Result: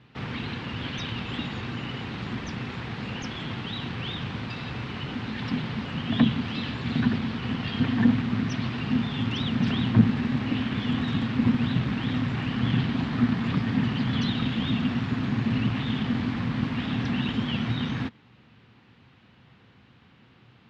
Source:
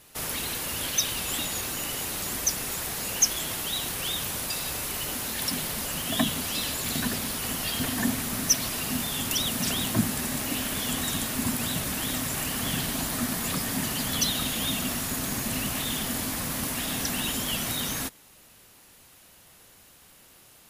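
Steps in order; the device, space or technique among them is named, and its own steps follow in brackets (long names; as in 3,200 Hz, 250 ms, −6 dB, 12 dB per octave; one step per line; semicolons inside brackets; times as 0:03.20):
guitar amplifier (tube saturation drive 21 dB, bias 0.7; bass and treble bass +7 dB, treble −9 dB; loudspeaker in its box 90–4,000 Hz, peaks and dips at 120 Hz +8 dB, 230 Hz +6 dB, 610 Hz −7 dB)
level +4 dB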